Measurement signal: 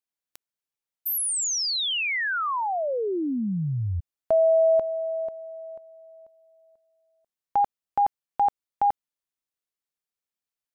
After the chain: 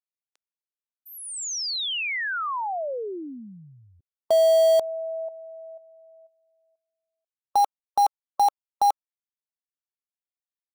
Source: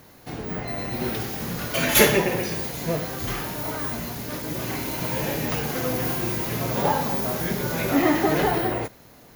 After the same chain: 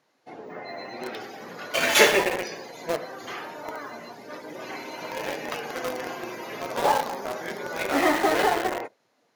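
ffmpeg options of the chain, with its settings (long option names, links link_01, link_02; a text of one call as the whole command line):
ffmpeg -i in.wav -filter_complex "[0:a]afftdn=noise_reduction=14:noise_floor=-38,highpass=440,lowpass=6800,asplit=2[link_01][link_02];[link_02]acrusher=bits=3:mix=0:aa=0.000001,volume=-5.5dB[link_03];[link_01][link_03]amix=inputs=2:normalize=0,volume=-1.5dB" out.wav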